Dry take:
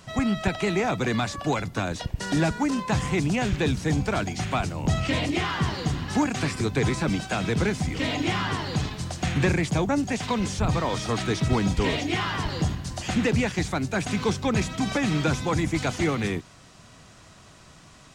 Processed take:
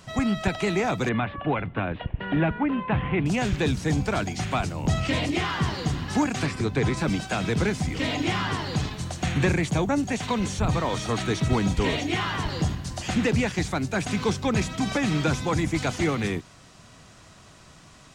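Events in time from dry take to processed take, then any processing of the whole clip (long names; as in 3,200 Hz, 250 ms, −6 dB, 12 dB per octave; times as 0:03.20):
0:01.09–0:03.26: Butterworth low-pass 3,100 Hz 48 dB per octave
0:06.46–0:06.97: high-shelf EQ 5,800 Hz −9 dB
0:08.95–0:12.49: notch filter 5,000 Hz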